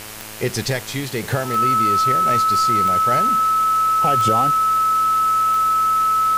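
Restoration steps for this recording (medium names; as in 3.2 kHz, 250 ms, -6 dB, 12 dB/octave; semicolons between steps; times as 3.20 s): de-click; de-hum 107.5 Hz, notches 29; band-stop 1.3 kHz, Q 30; noise reduction 30 dB, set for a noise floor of -30 dBFS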